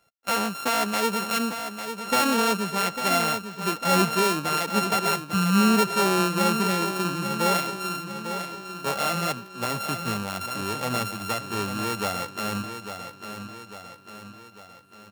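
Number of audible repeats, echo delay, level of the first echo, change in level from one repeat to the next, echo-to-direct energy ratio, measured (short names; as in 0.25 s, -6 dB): 5, 0.849 s, -9.0 dB, -5.5 dB, -7.5 dB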